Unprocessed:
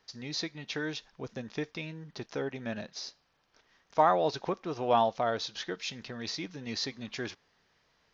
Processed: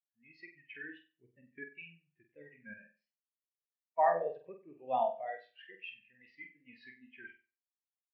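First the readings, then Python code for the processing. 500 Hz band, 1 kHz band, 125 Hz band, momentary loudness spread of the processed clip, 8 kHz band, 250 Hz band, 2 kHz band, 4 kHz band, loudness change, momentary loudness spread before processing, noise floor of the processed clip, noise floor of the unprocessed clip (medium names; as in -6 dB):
-6.0 dB, -5.0 dB, -22.0 dB, 24 LU, no reading, -18.0 dB, -6.0 dB, under -20 dB, -3.0 dB, 14 LU, under -85 dBFS, -72 dBFS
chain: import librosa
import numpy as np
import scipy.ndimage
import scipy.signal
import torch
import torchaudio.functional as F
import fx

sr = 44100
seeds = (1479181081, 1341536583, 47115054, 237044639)

y = fx.band_shelf(x, sr, hz=2300.0, db=13.5, octaves=1.1)
y = fx.env_lowpass(y, sr, base_hz=2100.0, full_db=-26.5)
y = fx.high_shelf(y, sr, hz=4000.0, db=-3.0)
y = fx.wow_flutter(y, sr, seeds[0], rate_hz=2.1, depth_cents=110.0)
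y = fx.room_flutter(y, sr, wall_m=8.1, rt60_s=0.77)
y = fx.spectral_expand(y, sr, expansion=2.5)
y = y * 10.0 ** (-8.0 / 20.0)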